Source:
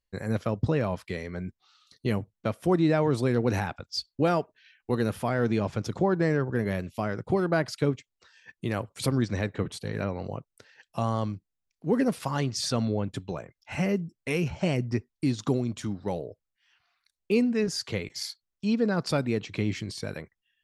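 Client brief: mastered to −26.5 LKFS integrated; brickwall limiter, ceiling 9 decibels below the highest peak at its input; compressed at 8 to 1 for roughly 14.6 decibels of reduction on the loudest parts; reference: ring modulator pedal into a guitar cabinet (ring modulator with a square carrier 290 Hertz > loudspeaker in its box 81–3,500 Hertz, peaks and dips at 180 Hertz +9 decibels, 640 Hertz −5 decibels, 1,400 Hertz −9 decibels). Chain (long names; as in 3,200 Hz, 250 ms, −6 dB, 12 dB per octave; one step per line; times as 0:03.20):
downward compressor 8 to 1, threshold −35 dBFS
brickwall limiter −29.5 dBFS
ring modulator with a square carrier 290 Hz
loudspeaker in its box 81–3,500 Hz, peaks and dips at 180 Hz +9 dB, 640 Hz −5 dB, 1,400 Hz −9 dB
level +15.5 dB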